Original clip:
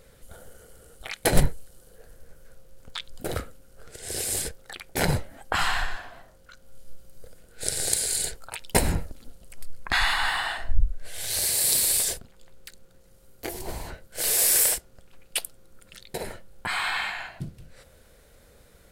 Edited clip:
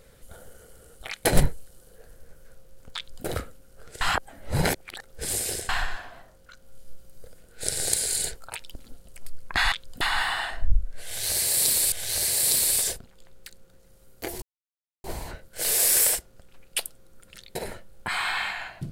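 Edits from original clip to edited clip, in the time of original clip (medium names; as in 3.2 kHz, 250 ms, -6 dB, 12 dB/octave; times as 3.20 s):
2.96–3.25 s: copy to 10.08 s
4.01–5.69 s: reverse
8.74–9.10 s: delete
11.13–11.99 s: loop, 2 plays
13.63 s: insert silence 0.62 s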